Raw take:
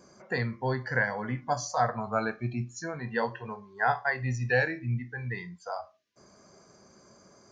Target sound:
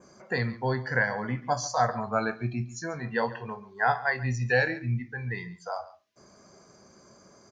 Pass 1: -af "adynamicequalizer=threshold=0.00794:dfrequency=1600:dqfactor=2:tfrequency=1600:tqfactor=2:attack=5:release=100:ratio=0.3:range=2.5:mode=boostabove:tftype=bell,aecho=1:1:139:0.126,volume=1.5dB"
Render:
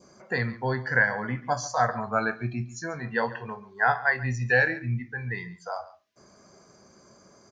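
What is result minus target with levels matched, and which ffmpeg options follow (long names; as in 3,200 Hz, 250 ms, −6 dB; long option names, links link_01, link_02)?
4,000 Hz band −3.5 dB
-af "adynamicequalizer=threshold=0.00794:dfrequency=4600:dqfactor=2:tfrequency=4600:tqfactor=2:attack=5:release=100:ratio=0.3:range=2.5:mode=boostabove:tftype=bell,aecho=1:1:139:0.126,volume=1.5dB"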